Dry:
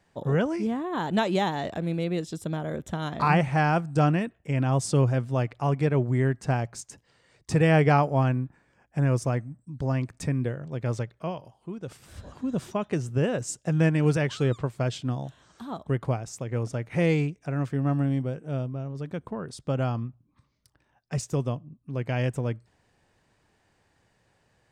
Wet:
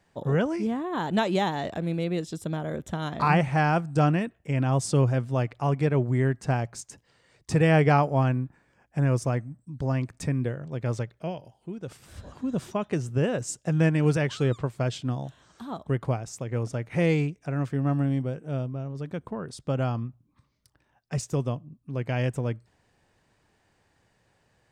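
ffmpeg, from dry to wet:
-filter_complex "[0:a]asettb=1/sr,asplit=3[a][b][c];[a]atrim=end=11.174[d];[b]atrim=start=11.17:end=11.78,asetpts=PTS-STARTPTS,afade=t=in:d=0.004:c=qsin,afade=t=out:st=0.606:d=0.004:c=qsin,equalizer=f=1.1k:t=o:w=0.28:g=-13.5[e];[c]atrim=start=11.776[f];[d][e]acrossfade=d=0.004:c1=hsin:c2=qsin[g];[g][f]acrossfade=d=0.004:c1=qsin:c2=hsin"

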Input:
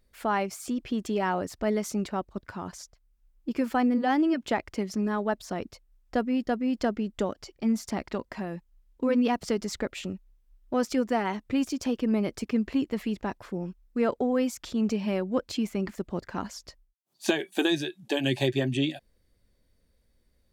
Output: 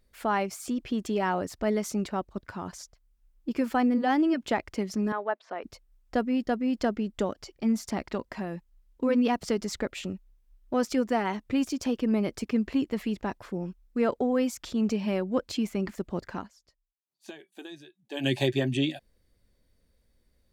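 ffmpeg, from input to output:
-filter_complex "[0:a]asettb=1/sr,asplit=3[a][b][c];[a]atrim=end=5.124[d];[b]atrim=start=5.12:end=5.64,asetpts=PTS-STARTPTS,afade=t=in:d=0.004:c=qsin,afade=t=out:st=0.516:d=0.004:c=qsin,asuperpass=centerf=1100:order=4:qfactor=0.54[e];[c]atrim=start=5.636[f];[d][e]acrossfade=d=0.004:c1=hsin:c2=qsin[g];[g][f]acrossfade=d=0.004:c1=qsin:c2=hsin,asplit=3[h][i][j];[h]atrim=end=16.49,asetpts=PTS-STARTPTS,afade=t=out:st=16.33:d=0.16:silence=0.11885[k];[i]atrim=start=16.49:end=18.1,asetpts=PTS-STARTPTS,volume=-18.5dB[l];[j]atrim=start=18.1,asetpts=PTS-STARTPTS,afade=t=in:d=0.16:silence=0.11885[m];[k][l][m]concat=n=3:v=0:a=1"

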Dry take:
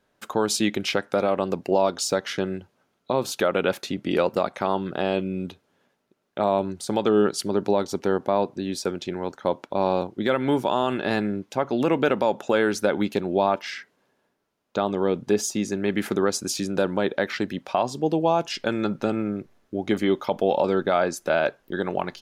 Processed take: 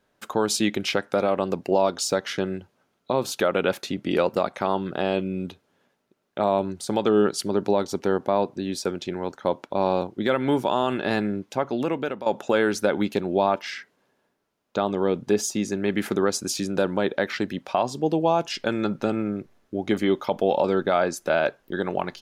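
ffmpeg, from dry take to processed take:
-filter_complex "[0:a]asplit=2[a][b];[a]atrim=end=12.26,asetpts=PTS-STARTPTS,afade=t=out:st=11.54:d=0.72:silence=0.223872[c];[b]atrim=start=12.26,asetpts=PTS-STARTPTS,afade=t=in:d=0.004:c=hsin:silence=0.223872[d];[c][d]concat=n=2:v=0:a=1"

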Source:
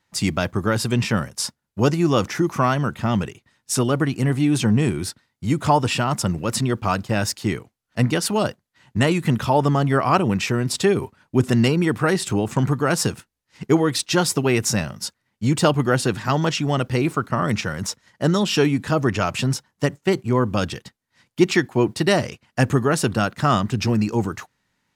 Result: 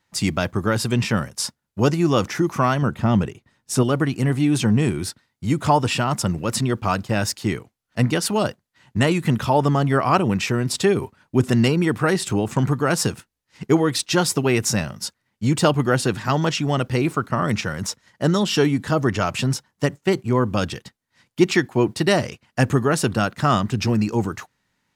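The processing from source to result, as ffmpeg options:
-filter_complex "[0:a]asettb=1/sr,asplit=3[a][b][c];[a]atrim=end=2.824[d];[b]atrim=start=2.82:end=3.83,asetpts=PTS-STARTPTS,afade=t=in:d=0.004:c=qsin,afade=t=out:st=1.006:d=0.004:c=qsin,tiltshelf=f=1.1k:g=3.5[e];[c]atrim=start=3.826[f];[d][e]acrossfade=d=0.004:c1=hsin:c2=qsin[g];[g][f]acrossfade=d=0.004:c1=qsin:c2=hsin,asettb=1/sr,asplit=3[h][i][j];[h]atrim=end=18.434[k];[i]atrim=start=18.43:end=19.26,asetpts=PTS-STARTPTS,afade=t=in:d=0.004:c=qsin,afade=t=out:st=0.826:d=0.004:c=qsin,bandreject=f=2.5k:w=11[l];[j]atrim=start=19.256[m];[k][l]acrossfade=d=0.004:c1=hsin:c2=qsin[n];[n][m]acrossfade=d=0.004:c1=qsin:c2=hsin"

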